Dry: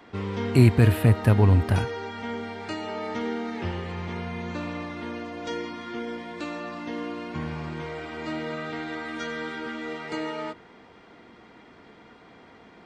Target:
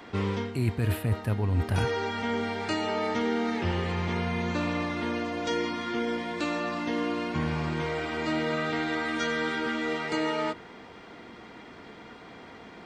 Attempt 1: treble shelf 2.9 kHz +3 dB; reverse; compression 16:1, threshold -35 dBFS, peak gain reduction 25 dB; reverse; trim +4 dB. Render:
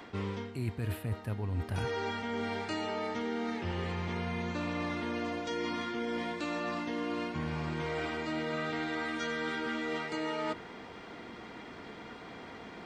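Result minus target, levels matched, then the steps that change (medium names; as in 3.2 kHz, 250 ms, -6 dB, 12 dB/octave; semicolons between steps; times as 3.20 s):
compression: peak gain reduction +8 dB
change: compression 16:1, threshold -26.5 dBFS, peak gain reduction 17 dB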